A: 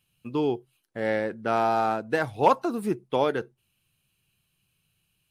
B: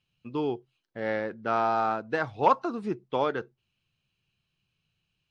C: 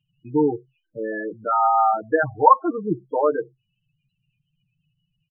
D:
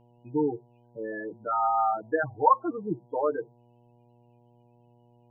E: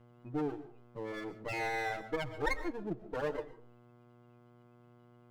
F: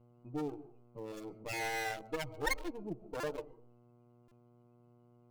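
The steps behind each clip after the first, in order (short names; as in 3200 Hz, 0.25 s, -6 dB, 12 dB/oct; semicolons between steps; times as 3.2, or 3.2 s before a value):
LPF 6000 Hz 24 dB/oct; dynamic EQ 1200 Hz, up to +6 dB, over -40 dBFS, Q 2.1; gain -4 dB
loudest bins only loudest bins 8; comb 6.5 ms, depth 80%; gain +6.5 dB
buzz 120 Hz, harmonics 8, -53 dBFS -4 dB/oct; gain -7 dB
minimum comb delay 0.41 ms; compressor 1.5:1, threshold -46 dBFS, peak gain reduction 10 dB; on a send at -12 dB: reverb RT60 0.35 s, pre-delay 85 ms
Wiener smoothing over 25 samples; pre-emphasis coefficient 0.8; stuck buffer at 3.2/4.28, samples 128, times 10; gain +11 dB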